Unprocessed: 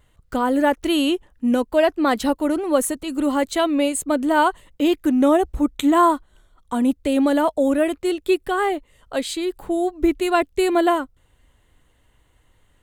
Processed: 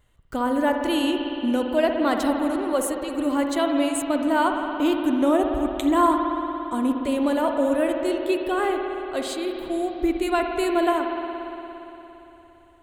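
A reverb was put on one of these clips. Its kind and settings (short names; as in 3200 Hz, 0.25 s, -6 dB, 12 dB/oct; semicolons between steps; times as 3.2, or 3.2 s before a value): spring tank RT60 3.5 s, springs 57 ms, chirp 30 ms, DRR 3 dB; gain -4.5 dB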